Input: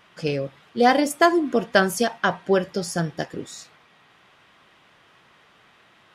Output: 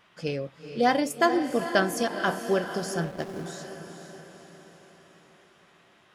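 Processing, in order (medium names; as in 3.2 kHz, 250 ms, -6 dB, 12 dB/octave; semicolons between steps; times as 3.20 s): echo that smears into a reverb 466 ms, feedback 52%, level -9 dB; 3.04–3.46 s: hysteresis with a dead band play -28 dBFS; trim -5.5 dB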